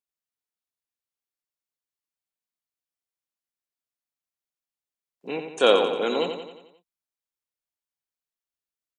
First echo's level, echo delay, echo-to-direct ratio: −7.0 dB, 89 ms, −5.5 dB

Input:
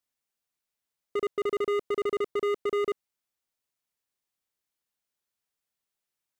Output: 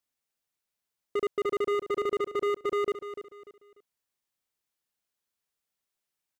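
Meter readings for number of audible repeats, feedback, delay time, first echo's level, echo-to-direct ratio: 3, 31%, 295 ms, −11.0 dB, −10.5 dB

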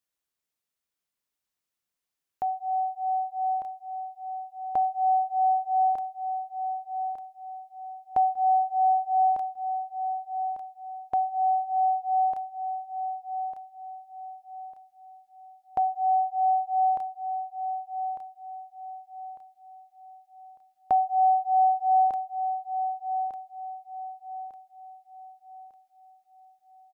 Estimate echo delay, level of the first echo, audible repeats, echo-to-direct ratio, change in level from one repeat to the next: 1,200 ms, −8.0 dB, 4, −7.5 dB, −9.0 dB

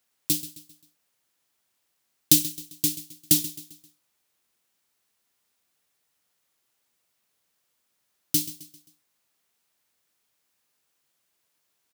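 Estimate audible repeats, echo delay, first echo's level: 3, 132 ms, −15.5 dB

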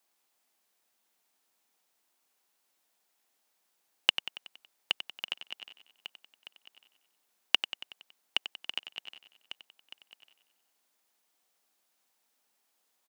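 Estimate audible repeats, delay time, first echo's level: 8, 93 ms, −11.0 dB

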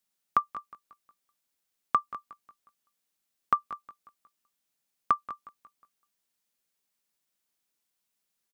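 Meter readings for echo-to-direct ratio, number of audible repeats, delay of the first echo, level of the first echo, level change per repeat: −17.0 dB, 3, 181 ms, −18.0 dB, −7.0 dB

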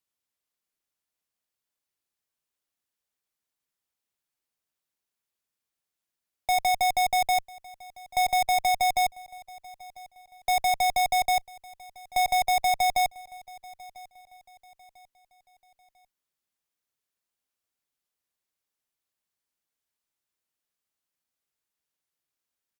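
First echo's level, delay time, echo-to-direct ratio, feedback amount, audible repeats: −22.0 dB, 996 ms, −21.5 dB, 38%, 2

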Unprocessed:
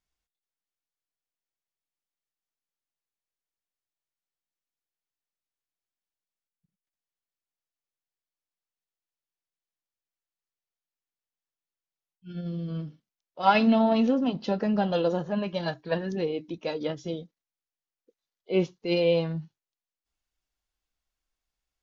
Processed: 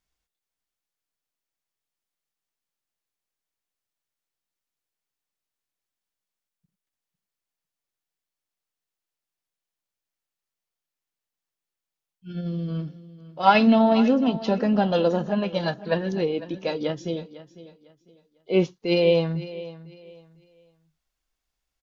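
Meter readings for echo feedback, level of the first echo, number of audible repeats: 27%, −16.5 dB, 2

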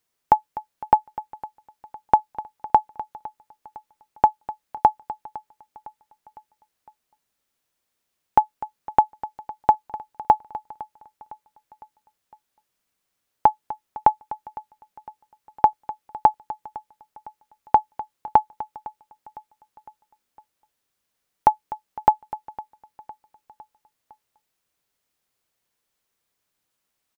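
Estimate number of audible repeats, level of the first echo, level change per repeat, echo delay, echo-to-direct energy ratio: 3, −20.0 dB, −5.0 dB, 507 ms, −18.5 dB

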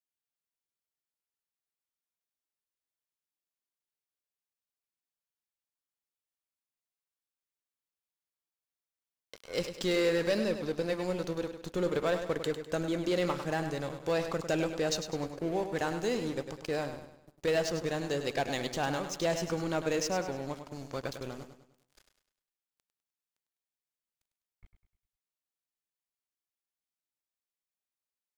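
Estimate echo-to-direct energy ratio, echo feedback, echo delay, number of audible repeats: −8.0 dB, 42%, 101 ms, 4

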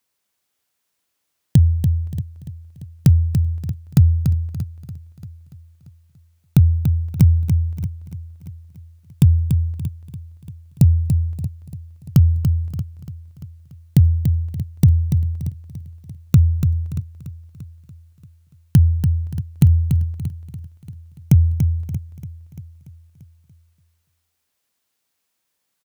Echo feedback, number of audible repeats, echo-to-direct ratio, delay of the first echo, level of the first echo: repeats not evenly spaced, 9, −6.0 dB, 288 ms, −7.0 dB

